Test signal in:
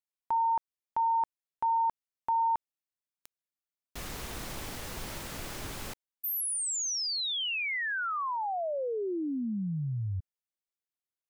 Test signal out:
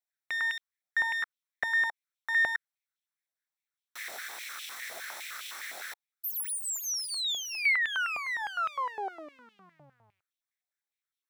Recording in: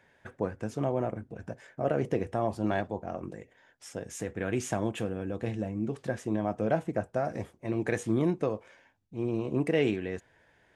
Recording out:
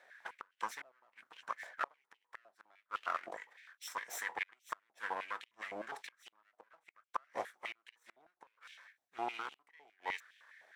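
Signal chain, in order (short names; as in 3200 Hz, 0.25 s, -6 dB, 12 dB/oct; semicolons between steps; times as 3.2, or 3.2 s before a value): minimum comb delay 0.53 ms; flipped gate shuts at -21 dBFS, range -36 dB; stepped high-pass 9.8 Hz 700–2900 Hz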